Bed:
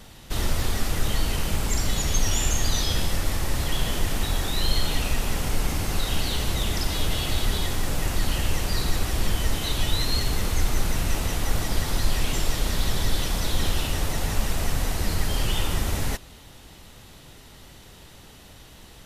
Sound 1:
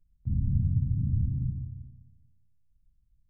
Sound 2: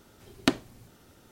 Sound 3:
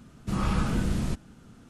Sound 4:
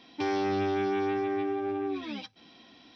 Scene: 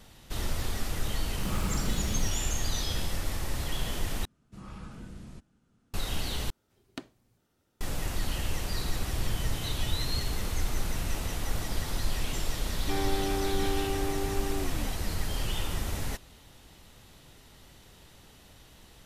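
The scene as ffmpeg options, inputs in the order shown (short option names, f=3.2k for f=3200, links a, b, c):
-filter_complex "[3:a]asplit=2[a][b];[0:a]volume=-7dB[c];[a]acrusher=bits=6:mode=log:mix=0:aa=0.000001[d];[c]asplit=3[e][f][g];[e]atrim=end=4.254[h];[b]atrim=end=1.69,asetpts=PTS-STARTPTS,volume=-17.5dB[i];[f]atrim=start=5.936:end=6.504[j];[2:a]atrim=end=1.31,asetpts=PTS-STARTPTS,volume=-17dB[k];[g]atrim=start=7.806[l];[d]atrim=end=1.69,asetpts=PTS-STARTPTS,volume=-7.5dB,afade=t=in:d=0.004:c=hsin,afade=t=out:st=1.686:d=0.004:c=hsin,adelay=1130[m];[1:a]atrim=end=3.29,asetpts=PTS-STARTPTS,volume=-12.5dB,afade=t=in:d=0.004:c=hsin,afade=t=out:st=3.286:d=0.004:c=hsin,adelay=8690[n];[4:a]atrim=end=2.95,asetpts=PTS-STARTPTS,volume=-3.5dB,afade=t=in:d=0.004:c=hsin,afade=t=out:st=2.946:d=0.004:c=hsin,adelay=12690[o];[h][i]acrossfade=d=0.004:c1=hsin:c2=hsin[p];[p][j]acrossfade=d=0.004:c1=hsin:c2=hsin[q];[q][k]acrossfade=d=0.004:c1=hsin:c2=hsin[r];[r][l]acrossfade=d=0.004:c1=hsin:c2=hsin[s];[s][m][n][o]amix=inputs=4:normalize=0"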